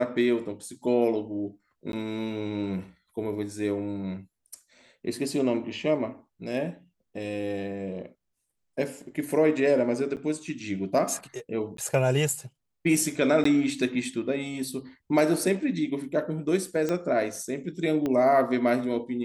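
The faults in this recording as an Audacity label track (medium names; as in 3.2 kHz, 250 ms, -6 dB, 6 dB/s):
1.920000	1.930000	dropout 12 ms
10.160000	10.170000	dropout 8.8 ms
11.770000	11.780000	dropout 13 ms
13.440000	13.450000	dropout 14 ms
16.890000	16.890000	pop -16 dBFS
18.060000	18.060000	pop -17 dBFS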